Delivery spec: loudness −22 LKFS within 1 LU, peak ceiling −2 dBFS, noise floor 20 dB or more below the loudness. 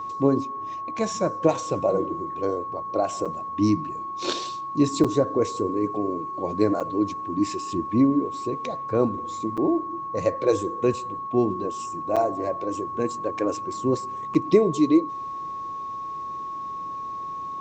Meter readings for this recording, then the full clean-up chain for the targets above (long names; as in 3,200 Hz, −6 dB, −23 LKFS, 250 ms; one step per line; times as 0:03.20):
number of dropouts 6; longest dropout 6.3 ms; interfering tone 1,100 Hz; level of the tone −30 dBFS; integrated loudness −25.5 LKFS; sample peak −6.0 dBFS; target loudness −22.0 LKFS
→ repair the gap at 0:03.25/0:05.04/0:06.80/0:09.57/0:12.16/0:14.34, 6.3 ms
notch filter 1,100 Hz, Q 30
level +3.5 dB